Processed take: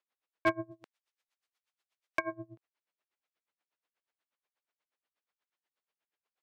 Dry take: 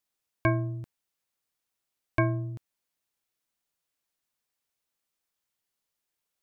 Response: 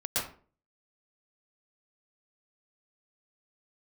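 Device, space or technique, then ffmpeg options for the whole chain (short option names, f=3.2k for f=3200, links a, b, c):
helicopter radio: -filter_complex "[0:a]asplit=3[a][b][c];[a]afade=t=out:st=0.7:d=0.02[d];[b]aemphasis=mode=production:type=riaa,afade=t=in:st=0.7:d=0.02,afade=t=out:st=2.31:d=0.02[e];[c]afade=t=in:st=2.31:d=0.02[f];[d][e][f]amix=inputs=3:normalize=0,highpass=360,lowpass=2.8k,aeval=exprs='val(0)*pow(10,-25*(0.5-0.5*cos(2*PI*8.3*n/s))/20)':c=same,asoftclip=type=hard:threshold=-24.5dB,volume=5dB"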